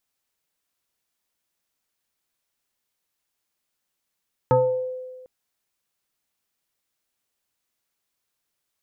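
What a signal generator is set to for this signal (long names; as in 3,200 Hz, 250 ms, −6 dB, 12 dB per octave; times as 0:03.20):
two-operator FM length 0.75 s, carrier 510 Hz, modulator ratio 0.75, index 1.3, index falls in 0.63 s exponential, decay 1.50 s, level −12.5 dB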